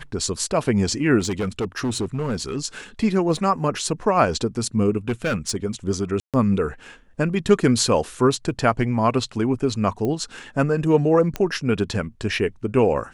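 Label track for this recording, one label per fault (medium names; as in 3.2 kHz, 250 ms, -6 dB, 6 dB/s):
1.190000	2.580000	clipped -20 dBFS
3.370000	3.370000	dropout 2.8 ms
5.090000	5.570000	clipped -18 dBFS
6.200000	6.340000	dropout 137 ms
10.050000	10.050000	pop -15 dBFS
11.360000	11.360000	pop -11 dBFS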